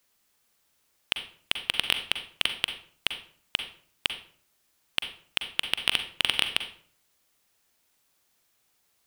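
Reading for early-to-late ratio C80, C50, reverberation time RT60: 13.5 dB, 9.5 dB, 0.50 s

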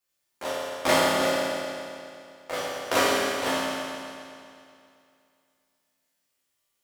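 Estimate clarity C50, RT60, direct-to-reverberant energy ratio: -3.0 dB, 2.5 s, -8.5 dB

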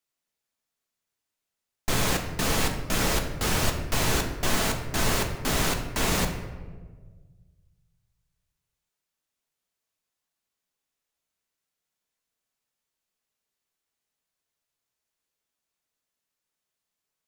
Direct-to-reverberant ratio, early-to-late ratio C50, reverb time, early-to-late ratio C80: 3.0 dB, 7.5 dB, 1.5 s, 9.5 dB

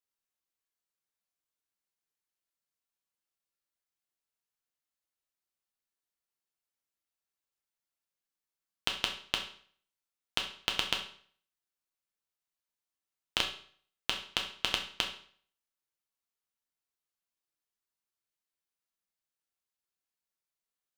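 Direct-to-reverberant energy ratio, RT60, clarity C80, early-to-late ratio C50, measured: 1.0 dB, 0.50 s, 12.5 dB, 8.5 dB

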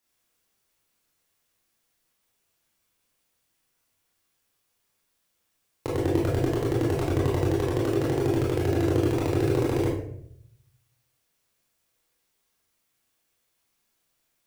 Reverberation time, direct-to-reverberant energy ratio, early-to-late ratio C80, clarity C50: 0.70 s, -5.5 dB, 6.0 dB, 2.0 dB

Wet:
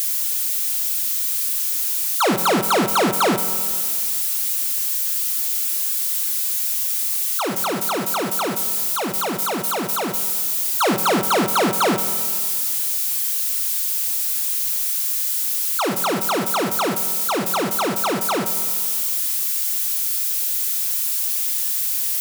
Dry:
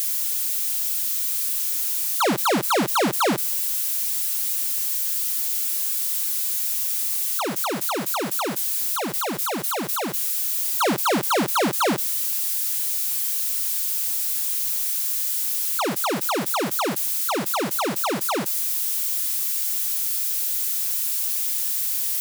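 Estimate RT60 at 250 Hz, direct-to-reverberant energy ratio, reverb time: 2.0 s, 8.5 dB, 2.0 s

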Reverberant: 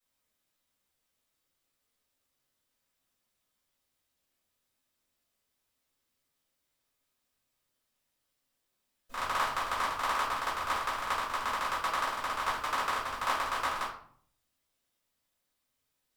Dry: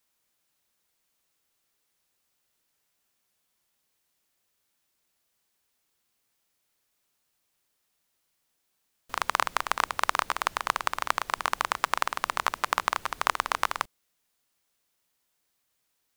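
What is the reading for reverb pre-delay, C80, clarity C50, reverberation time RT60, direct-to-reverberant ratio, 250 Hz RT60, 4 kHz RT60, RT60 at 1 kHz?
3 ms, 9.0 dB, 4.5 dB, 0.55 s, -9.5 dB, 0.80 s, 0.40 s, 0.55 s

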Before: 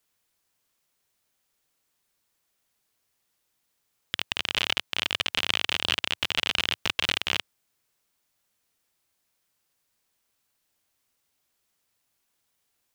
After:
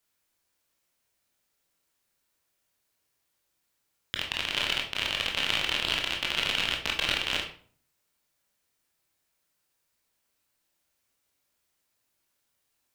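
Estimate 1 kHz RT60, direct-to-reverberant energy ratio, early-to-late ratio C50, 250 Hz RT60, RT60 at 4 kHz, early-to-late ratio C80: 0.45 s, 0.0 dB, 8.0 dB, 0.65 s, 0.35 s, 12.0 dB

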